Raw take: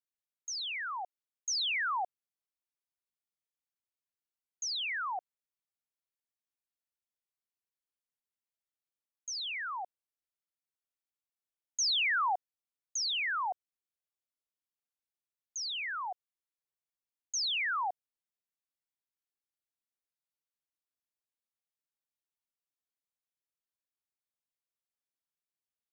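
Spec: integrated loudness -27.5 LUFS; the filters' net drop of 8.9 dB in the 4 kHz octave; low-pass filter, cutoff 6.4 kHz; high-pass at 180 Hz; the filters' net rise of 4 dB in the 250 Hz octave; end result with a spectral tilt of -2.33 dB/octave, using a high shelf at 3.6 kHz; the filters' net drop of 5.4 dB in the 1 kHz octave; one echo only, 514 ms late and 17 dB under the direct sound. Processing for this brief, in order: high-pass 180 Hz; low-pass 6.4 kHz; peaking EQ 250 Hz +8 dB; peaking EQ 1 kHz -6.5 dB; treble shelf 3.6 kHz -7.5 dB; peaking EQ 4 kHz -5.5 dB; delay 514 ms -17 dB; trim +12.5 dB

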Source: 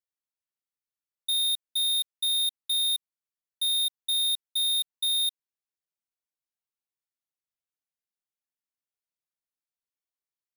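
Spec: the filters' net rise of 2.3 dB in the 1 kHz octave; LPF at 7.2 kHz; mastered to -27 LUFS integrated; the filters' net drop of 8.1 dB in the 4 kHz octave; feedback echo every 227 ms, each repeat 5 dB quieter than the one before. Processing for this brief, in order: low-pass 7.2 kHz; peaking EQ 1 kHz +3.5 dB; peaking EQ 4 kHz -8.5 dB; feedback delay 227 ms, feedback 56%, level -5 dB; trim +6.5 dB

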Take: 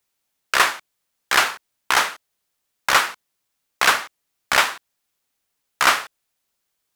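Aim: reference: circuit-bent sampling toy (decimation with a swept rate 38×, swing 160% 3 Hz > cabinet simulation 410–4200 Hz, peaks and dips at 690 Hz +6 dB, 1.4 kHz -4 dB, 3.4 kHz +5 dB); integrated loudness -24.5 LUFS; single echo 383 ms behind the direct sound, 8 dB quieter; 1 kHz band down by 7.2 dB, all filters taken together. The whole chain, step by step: peaking EQ 1 kHz -9 dB; delay 383 ms -8 dB; decimation with a swept rate 38×, swing 160% 3 Hz; cabinet simulation 410–4200 Hz, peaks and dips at 690 Hz +6 dB, 1.4 kHz -4 dB, 3.4 kHz +5 dB; trim +1 dB

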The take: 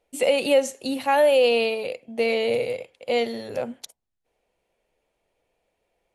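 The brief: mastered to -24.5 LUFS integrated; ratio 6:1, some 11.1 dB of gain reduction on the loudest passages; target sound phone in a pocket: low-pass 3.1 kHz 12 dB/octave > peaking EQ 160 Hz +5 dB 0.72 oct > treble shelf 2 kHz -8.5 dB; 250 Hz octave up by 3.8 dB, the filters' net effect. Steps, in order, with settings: peaking EQ 250 Hz +3 dB; compression 6:1, threshold -26 dBFS; low-pass 3.1 kHz 12 dB/octave; peaking EQ 160 Hz +5 dB 0.72 oct; treble shelf 2 kHz -8.5 dB; trim +7 dB

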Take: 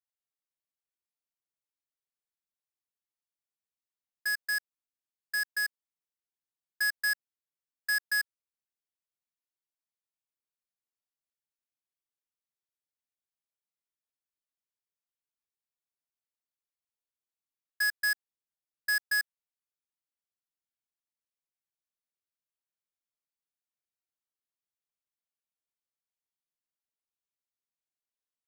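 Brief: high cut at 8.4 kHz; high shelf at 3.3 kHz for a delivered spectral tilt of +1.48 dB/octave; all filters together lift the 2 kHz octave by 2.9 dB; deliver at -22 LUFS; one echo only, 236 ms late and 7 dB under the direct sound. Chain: low-pass 8.4 kHz; peaking EQ 2 kHz +5 dB; treble shelf 3.3 kHz -5.5 dB; delay 236 ms -7 dB; trim +9 dB

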